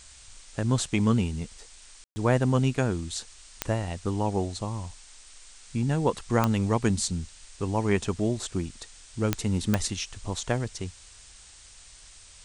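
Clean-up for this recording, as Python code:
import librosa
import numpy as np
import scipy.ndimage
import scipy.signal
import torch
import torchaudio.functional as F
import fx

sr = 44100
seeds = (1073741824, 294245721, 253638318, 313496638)

y = fx.fix_declick_ar(x, sr, threshold=10.0)
y = fx.fix_ambience(y, sr, seeds[0], print_start_s=11.36, print_end_s=11.86, start_s=2.04, end_s=2.16)
y = fx.noise_reduce(y, sr, print_start_s=11.36, print_end_s=11.86, reduce_db=22.0)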